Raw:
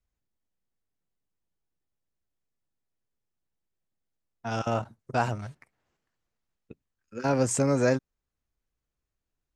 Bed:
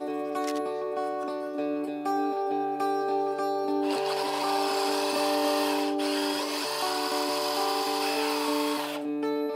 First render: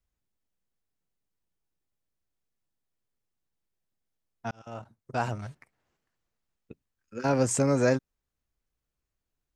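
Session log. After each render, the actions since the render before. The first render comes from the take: 4.51–5.5 fade in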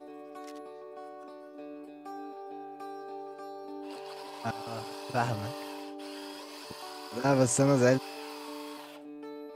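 add bed -14.5 dB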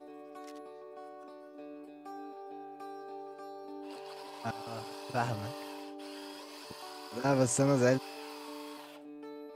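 gain -3 dB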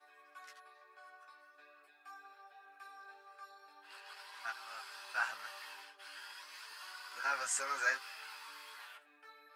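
resonant high-pass 1500 Hz, resonance Q 2.8; chorus voices 4, 0.41 Hz, delay 14 ms, depth 4.8 ms

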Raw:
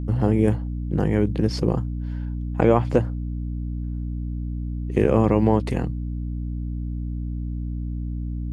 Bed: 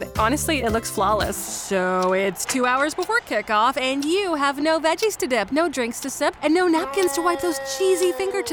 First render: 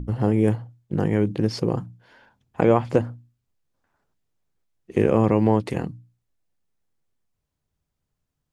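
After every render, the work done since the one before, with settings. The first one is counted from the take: notches 60/120/180/240/300 Hz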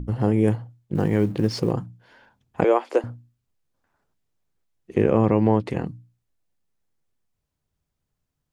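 0.95–1.72 G.711 law mismatch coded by mu; 2.64–3.04 steep high-pass 330 Hz; 4.94–5.86 high shelf 6300 Hz -12 dB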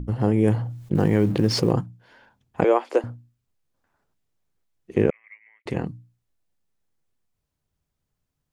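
0.46–1.81 fast leveller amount 50%; 5.1–5.66 Butterworth band-pass 2100 Hz, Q 6.8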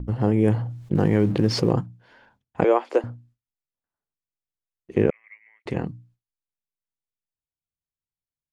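high shelf 9500 Hz -11.5 dB; gate with hold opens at -48 dBFS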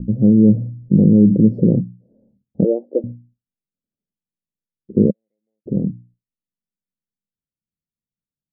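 elliptic low-pass 560 Hz, stop band 50 dB; bell 200 Hz +14 dB 0.88 oct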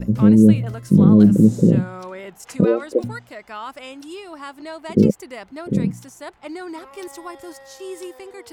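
add bed -14 dB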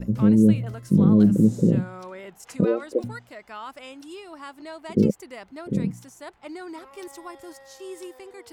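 gain -5 dB

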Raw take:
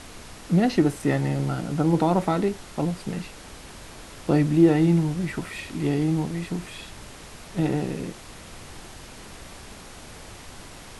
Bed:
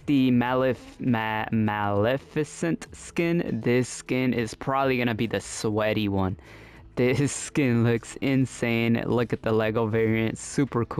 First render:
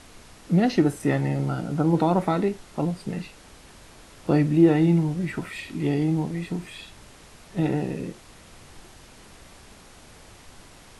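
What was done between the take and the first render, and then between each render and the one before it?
noise print and reduce 6 dB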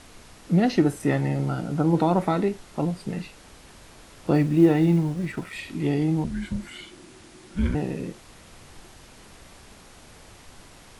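4.34–5.53 G.711 law mismatch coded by A; 6.24–7.75 frequency shift -380 Hz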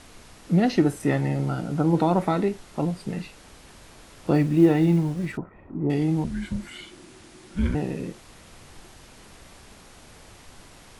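5.37–5.9 LPF 1100 Hz 24 dB/oct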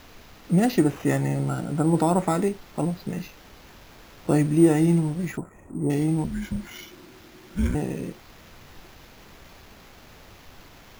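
sample-and-hold 5×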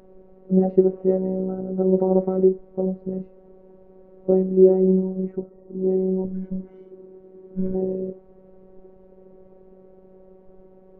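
synth low-pass 460 Hz, resonance Q 4.9; robotiser 188 Hz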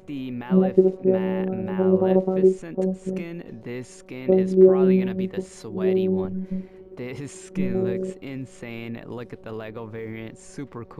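add bed -11 dB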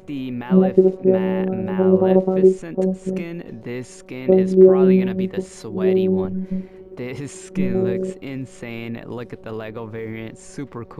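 gain +4 dB; limiter -1 dBFS, peak gain reduction 1.5 dB

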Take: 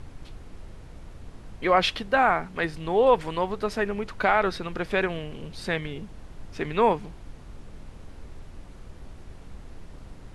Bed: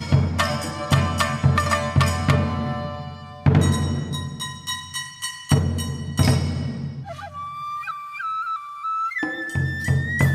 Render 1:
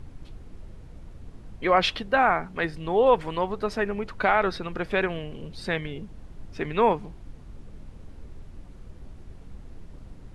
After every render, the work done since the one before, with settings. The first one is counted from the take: denoiser 6 dB, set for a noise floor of -46 dBFS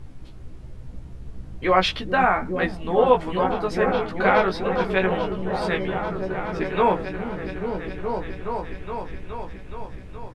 doubler 16 ms -3 dB; repeats that get brighter 0.42 s, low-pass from 200 Hz, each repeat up 1 oct, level 0 dB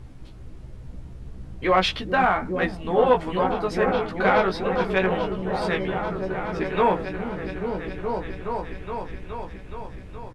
one diode to ground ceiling -5 dBFS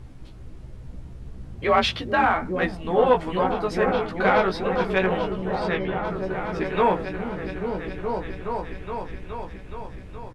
1.55–2.34 frequency shift +42 Hz; 5.55–6.05 air absorption 84 m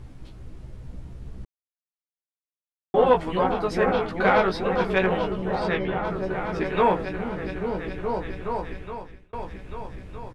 1.45–2.94 mute; 8.71–9.33 fade out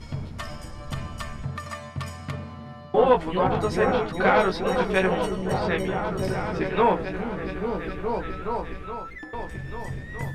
add bed -14.5 dB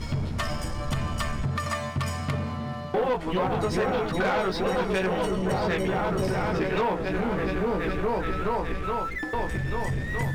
compressor 4:1, threshold -29 dBFS, peak gain reduction 13.5 dB; sample leveller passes 2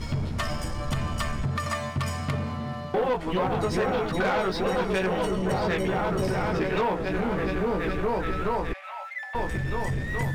8.73–9.35 rippled Chebyshev high-pass 560 Hz, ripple 9 dB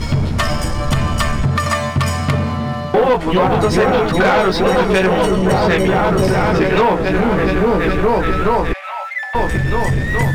gain +12 dB

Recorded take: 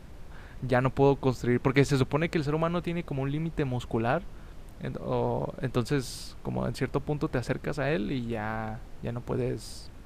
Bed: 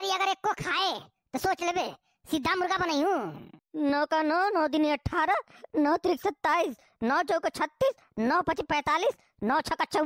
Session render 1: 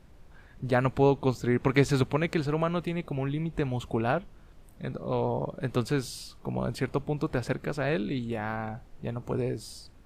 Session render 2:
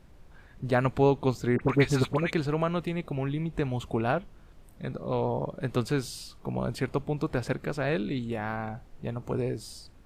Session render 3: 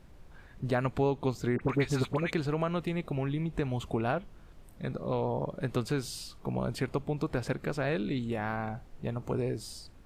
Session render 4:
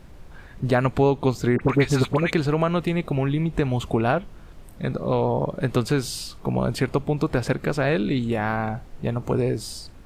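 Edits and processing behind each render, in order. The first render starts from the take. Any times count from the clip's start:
noise print and reduce 8 dB
1.56–2.33 dispersion highs, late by 50 ms, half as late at 1300 Hz
compressor 2:1, threshold -28 dBFS, peak gain reduction 6.5 dB
gain +9 dB

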